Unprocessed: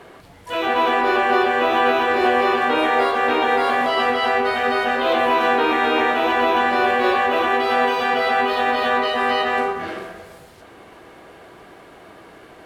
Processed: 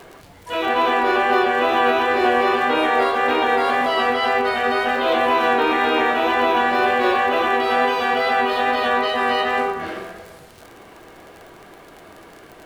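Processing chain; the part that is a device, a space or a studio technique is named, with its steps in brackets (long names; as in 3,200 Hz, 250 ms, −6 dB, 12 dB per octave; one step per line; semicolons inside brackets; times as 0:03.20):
vinyl LP (tape wow and flutter 17 cents; surface crackle 48 per second −31 dBFS; pink noise bed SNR 38 dB)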